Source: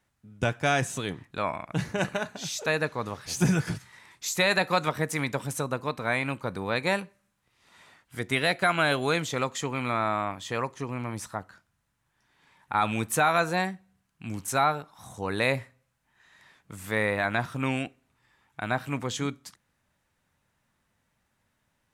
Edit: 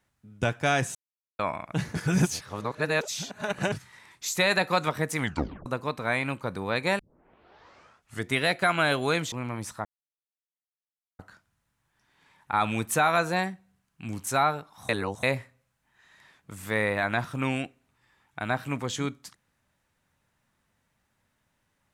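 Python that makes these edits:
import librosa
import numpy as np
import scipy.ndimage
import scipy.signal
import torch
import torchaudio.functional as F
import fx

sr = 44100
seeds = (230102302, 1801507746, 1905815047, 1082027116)

y = fx.edit(x, sr, fx.silence(start_s=0.95, length_s=0.44),
    fx.reverse_span(start_s=1.95, length_s=1.77),
    fx.tape_stop(start_s=5.19, length_s=0.47),
    fx.tape_start(start_s=6.99, length_s=1.3),
    fx.cut(start_s=9.32, length_s=1.55),
    fx.insert_silence(at_s=11.4, length_s=1.34),
    fx.reverse_span(start_s=15.1, length_s=0.34), tone=tone)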